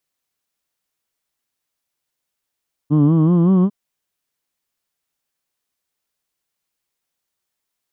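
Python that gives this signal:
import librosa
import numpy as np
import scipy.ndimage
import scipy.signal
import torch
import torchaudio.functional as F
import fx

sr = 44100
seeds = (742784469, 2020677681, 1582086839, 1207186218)

y = fx.formant_vowel(sr, seeds[0], length_s=0.8, hz=143.0, glide_st=5.5, vibrato_hz=5.3, vibrato_st=0.9, f1_hz=260.0, f2_hz=1100.0, f3_hz=3100.0)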